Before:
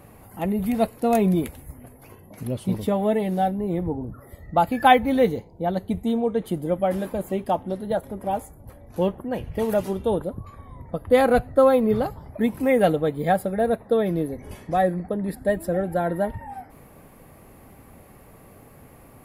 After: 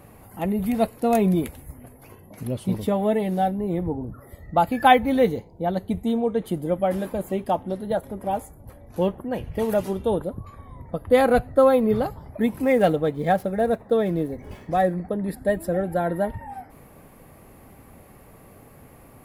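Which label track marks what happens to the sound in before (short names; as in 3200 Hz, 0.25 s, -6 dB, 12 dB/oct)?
12.640000	15.090000	median filter over 5 samples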